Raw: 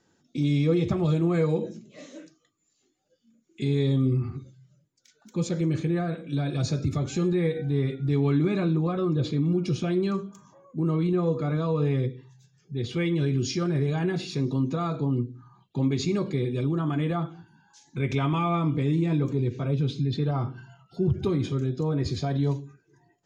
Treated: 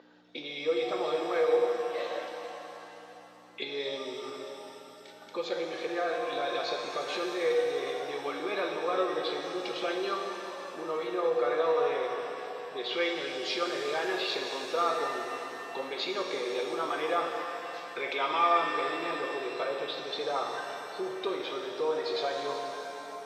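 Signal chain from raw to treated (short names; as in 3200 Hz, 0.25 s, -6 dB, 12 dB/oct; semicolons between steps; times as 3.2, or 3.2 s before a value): hum 60 Hz, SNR 13 dB; compressor 4:1, threshold -30 dBFS, peak gain reduction 10 dB; Chebyshev band-pass 480–4000 Hz, order 3; shimmer reverb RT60 3.4 s, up +7 st, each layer -8 dB, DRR 2 dB; gain +9 dB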